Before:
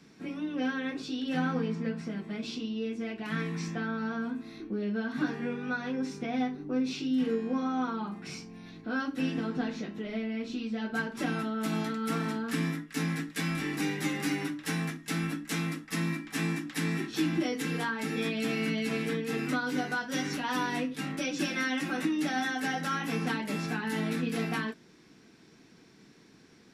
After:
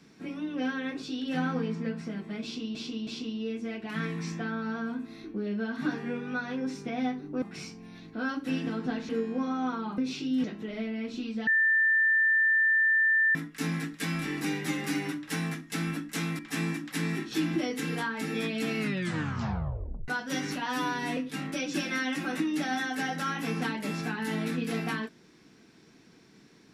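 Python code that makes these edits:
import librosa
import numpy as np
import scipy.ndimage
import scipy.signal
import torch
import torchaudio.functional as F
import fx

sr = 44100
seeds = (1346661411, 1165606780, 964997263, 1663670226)

y = fx.edit(x, sr, fx.repeat(start_s=2.43, length_s=0.32, count=3),
    fx.swap(start_s=6.78, length_s=0.46, other_s=8.13, other_length_s=1.67),
    fx.bleep(start_s=10.83, length_s=1.88, hz=1780.0, db=-20.5),
    fx.cut(start_s=15.75, length_s=0.46),
    fx.tape_stop(start_s=18.61, length_s=1.29),
    fx.stretch_span(start_s=20.48, length_s=0.34, factor=1.5), tone=tone)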